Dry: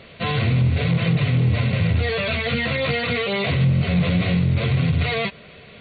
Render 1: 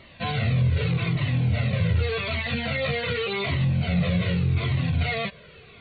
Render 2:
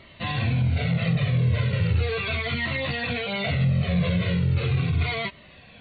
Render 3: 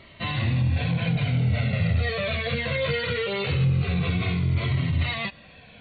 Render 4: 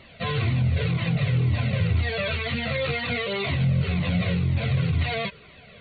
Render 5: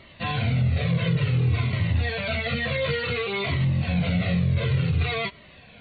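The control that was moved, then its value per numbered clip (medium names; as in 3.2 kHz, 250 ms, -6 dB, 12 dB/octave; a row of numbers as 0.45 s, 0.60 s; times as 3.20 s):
Shepard-style flanger, rate: 0.85 Hz, 0.38 Hz, 0.21 Hz, 2 Hz, 0.56 Hz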